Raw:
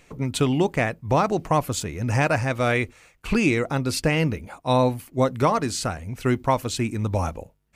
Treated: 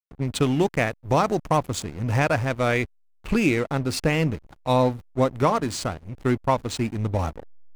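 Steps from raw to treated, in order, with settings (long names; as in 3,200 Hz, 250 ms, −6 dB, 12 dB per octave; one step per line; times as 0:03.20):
0:00.42–0:01.57: high-shelf EQ 5,200 Hz +7 dB
slack as between gear wheels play −27.5 dBFS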